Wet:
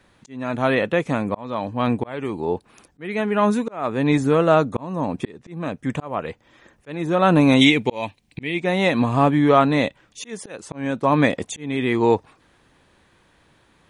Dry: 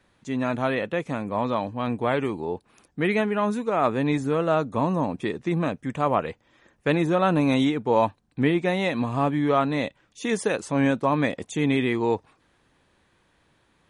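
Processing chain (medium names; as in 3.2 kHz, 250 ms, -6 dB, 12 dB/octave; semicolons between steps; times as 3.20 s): slow attack 478 ms; 7.61–8.60 s: resonant high shelf 1.8 kHz +7 dB, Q 3; trim +6.5 dB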